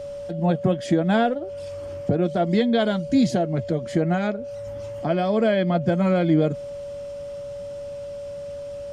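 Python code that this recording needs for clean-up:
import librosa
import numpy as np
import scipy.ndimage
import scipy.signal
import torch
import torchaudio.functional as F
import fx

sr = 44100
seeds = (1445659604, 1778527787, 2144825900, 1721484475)

y = fx.notch(x, sr, hz=570.0, q=30.0)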